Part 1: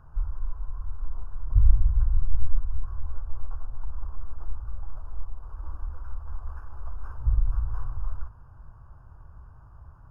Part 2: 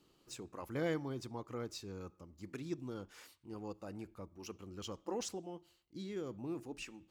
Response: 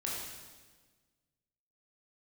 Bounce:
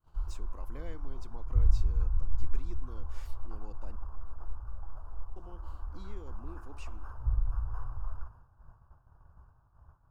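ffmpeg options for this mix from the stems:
-filter_complex "[0:a]lowshelf=f=160:g=-3,volume=0.668[s0];[1:a]acompressor=threshold=0.002:ratio=2,volume=0.944,asplit=3[s1][s2][s3];[s1]atrim=end=3.96,asetpts=PTS-STARTPTS,afade=t=out:st=3.956:d=0.004:c=hsin[s4];[s2]atrim=start=3.96:end=5.36,asetpts=PTS-STARTPTS,volume=0[s5];[s3]atrim=start=5.36,asetpts=PTS-STARTPTS,afade=t=in:d=0.004:c=hsin[s6];[s4][s5][s6]concat=n=3:v=0:a=1[s7];[s0][s7]amix=inputs=2:normalize=0,agate=range=0.0224:threshold=0.00501:ratio=3:detection=peak,equalizer=f=760:t=o:w=0.77:g=2.5"

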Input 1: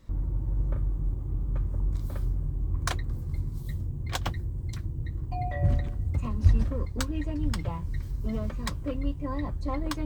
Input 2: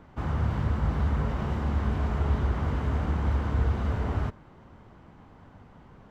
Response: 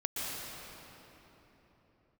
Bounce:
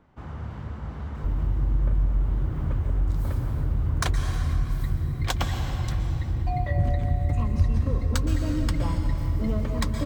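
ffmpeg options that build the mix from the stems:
-filter_complex "[0:a]adelay=1150,volume=1.26,asplit=2[s0][s1];[s1]volume=0.562[s2];[1:a]volume=0.398[s3];[2:a]atrim=start_sample=2205[s4];[s2][s4]afir=irnorm=-1:irlink=0[s5];[s0][s3][s5]amix=inputs=3:normalize=0,acompressor=threshold=0.0794:ratio=2"

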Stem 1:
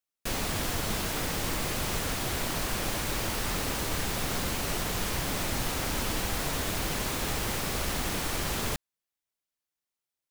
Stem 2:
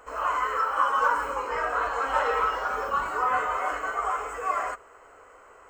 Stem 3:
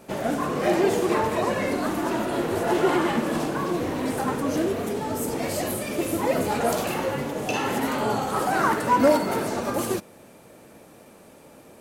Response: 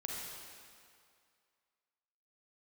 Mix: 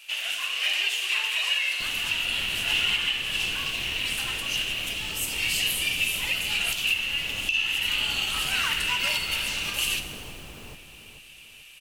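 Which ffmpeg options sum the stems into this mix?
-filter_complex "[0:a]tiltshelf=f=970:g=4.5,adelay=1550,volume=0.501,asplit=2[s0][s1];[s1]volume=0.335[s2];[2:a]highpass=f=2800:t=q:w=9,volume=1,asplit=2[s3][s4];[s4]volume=0.531[s5];[s0]acompressor=threshold=0.00794:ratio=6,volume=1[s6];[3:a]atrim=start_sample=2205[s7];[s5][s7]afir=irnorm=-1:irlink=0[s8];[s2]aecho=0:1:439|878|1317|1756|2195:1|0.36|0.13|0.0467|0.0168[s9];[s3][s6][s8][s9]amix=inputs=4:normalize=0,alimiter=limit=0.188:level=0:latency=1:release=433"

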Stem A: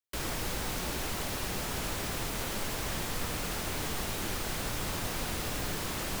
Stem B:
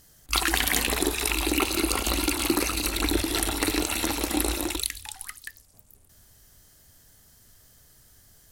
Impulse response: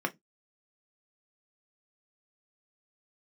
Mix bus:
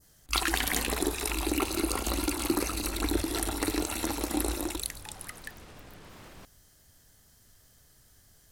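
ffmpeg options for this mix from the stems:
-filter_complex "[0:a]aemphasis=mode=reproduction:type=50fm,alimiter=level_in=2.82:limit=0.0631:level=0:latency=1:release=130,volume=0.355,adelay=250,volume=0.422,asplit=3[s0][s1][s2];[s0]atrim=end=3.41,asetpts=PTS-STARTPTS,afade=t=out:st=3.406:d=0.004:c=hsin[s3];[s1]atrim=start=3.41:end=4.18,asetpts=PTS-STARTPTS,volume=0[s4];[s2]atrim=start=4.18,asetpts=PTS-STARTPTS,afade=t=in:d=0.004:c=hsin[s5];[s3][s4][s5]concat=n=3:v=0:a=1[s6];[1:a]highshelf=f=11000:g=-4.5,volume=0.708[s7];[s6][s7]amix=inputs=2:normalize=0,adynamicequalizer=threshold=0.00562:dfrequency=2900:dqfactor=0.89:tfrequency=2900:tqfactor=0.89:attack=5:release=100:ratio=0.375:range=3:mode=cutabove:tftype=bell"

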